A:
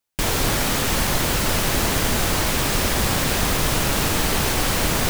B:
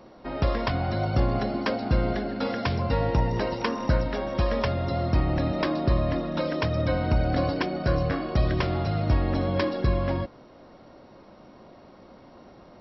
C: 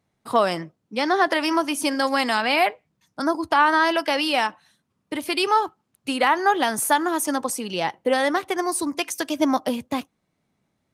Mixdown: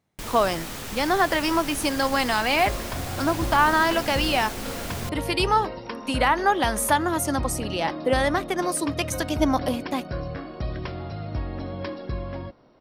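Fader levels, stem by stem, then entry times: -13.5 dB, -7.0 dB, -1.5 dB; 0.00 s, 2.25 s, 0.00 s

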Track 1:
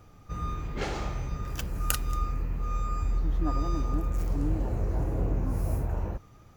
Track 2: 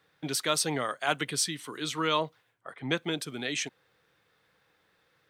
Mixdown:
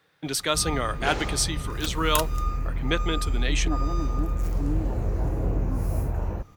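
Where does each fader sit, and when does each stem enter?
+2.5 dB, +3.0 dB; 0.25 s, 0.00 s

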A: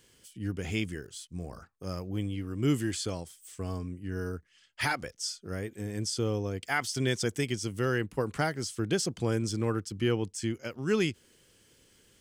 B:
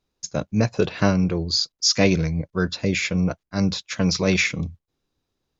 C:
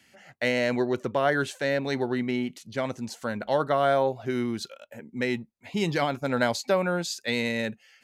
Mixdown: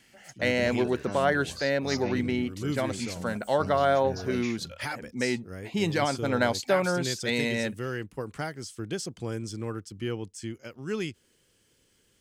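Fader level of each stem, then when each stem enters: -4.5 dB, -18.5 dB, -0.5 dB; 0.00 s, 0.05 s, 0.00 s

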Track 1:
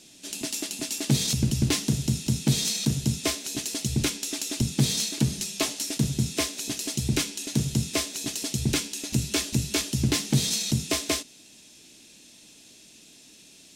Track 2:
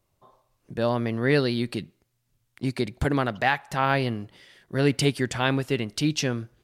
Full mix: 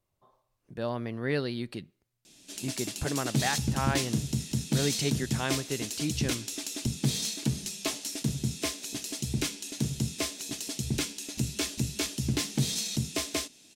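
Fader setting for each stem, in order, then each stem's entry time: -5.0 dB, -8.0 dB; 2.25 s, 0.00 s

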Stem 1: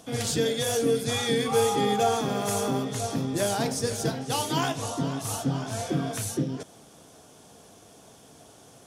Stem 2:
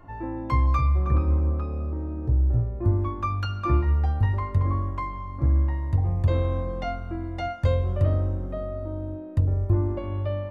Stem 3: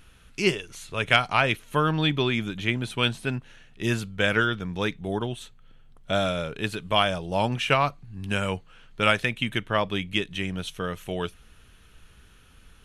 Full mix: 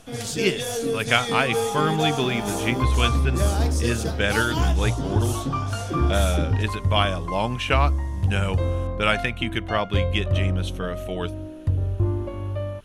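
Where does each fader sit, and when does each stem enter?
-1.5 dB, -0.5 dB, 0.0 dB; 0.00 s, 2.30 s, 0.00 s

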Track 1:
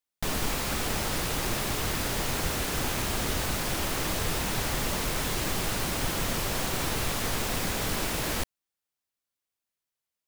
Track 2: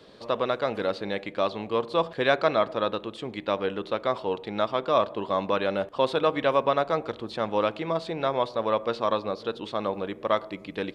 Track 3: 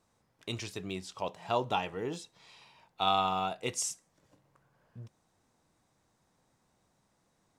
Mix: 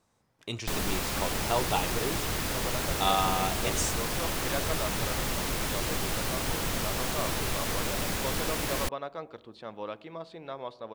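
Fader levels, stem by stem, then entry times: -1.5 dB, -13.0 dB, +1.5 dB; 0.45 s, 2.25 s, 0.00 s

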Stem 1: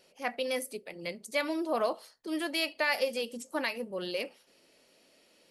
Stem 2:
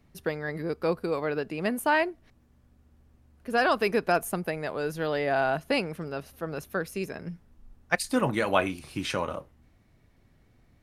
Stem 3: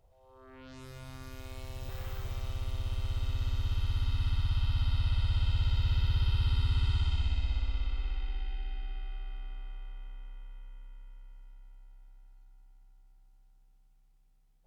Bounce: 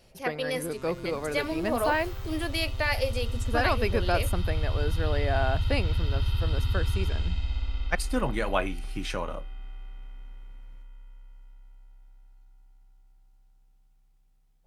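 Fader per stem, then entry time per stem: +1.0 dB, -3.0 dB, +1.5 dB; 0.00 s, 0.00 s, 0.00 s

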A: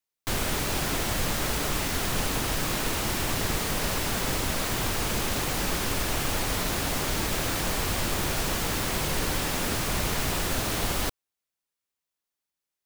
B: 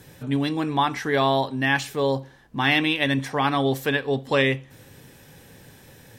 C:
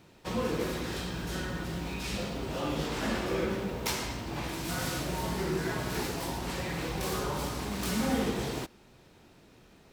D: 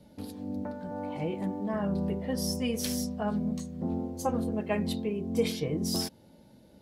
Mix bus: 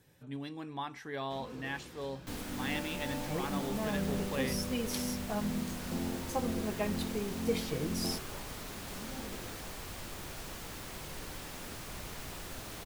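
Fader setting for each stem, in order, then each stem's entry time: -16.0 dB, -17.5 dB, -16.5 dB, -4.5 dB; 2.00 s, 0.00 s, 1.05 s, 2.10 s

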